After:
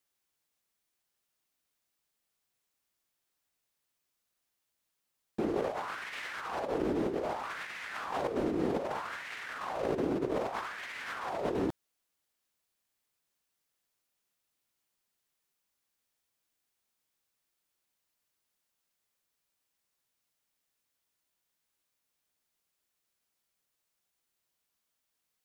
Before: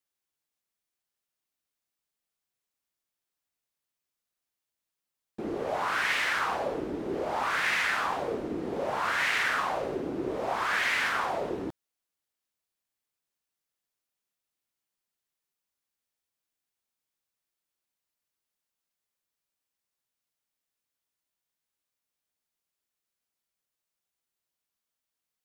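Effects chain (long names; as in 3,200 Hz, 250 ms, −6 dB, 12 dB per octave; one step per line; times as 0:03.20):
compressor whose output falls as the input rises −34 dBFS, ratio −0.5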